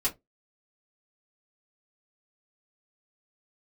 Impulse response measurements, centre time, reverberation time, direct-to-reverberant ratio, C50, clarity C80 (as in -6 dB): 12 ms, 0.20 s, -7.0 dB, 19.0 dB, 29.5 dB